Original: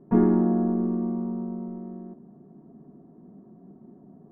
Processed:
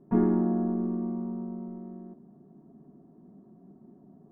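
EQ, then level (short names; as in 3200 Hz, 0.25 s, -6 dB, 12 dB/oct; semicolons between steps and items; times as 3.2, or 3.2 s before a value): notch 480 Hz, Q 12; -4.0 dB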